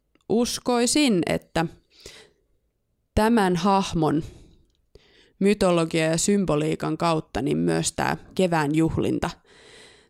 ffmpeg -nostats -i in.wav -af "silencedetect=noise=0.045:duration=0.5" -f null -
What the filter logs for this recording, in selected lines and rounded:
silence_start: 2.06
silence_end: 3.17 | silence_duration: 1.11
silence_start: 4.24
silence_end: 5.41 | silence_duration: 1.17
silence_start: 9.31
silence_end: 10.10 | silence_duration: 0.79